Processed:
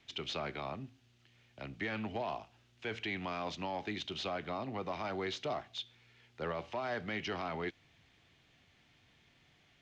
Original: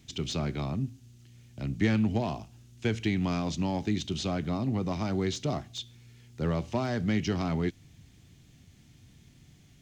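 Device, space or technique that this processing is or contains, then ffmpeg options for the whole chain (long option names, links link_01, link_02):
DJ mixer with the lows and highs turned down: -filter_complex "[0:a]acrossover=split=470 3900:gain=0.126 1 0.0891[link_01][link_02][link_03];[link_01][link_02][link_03]amix=inputs=3:normalize=0,alimiter=level_in=5.5dB:limit=-24dB:level=0:latency=1:release=17,volume=-5.5dB,volume=1.5dB"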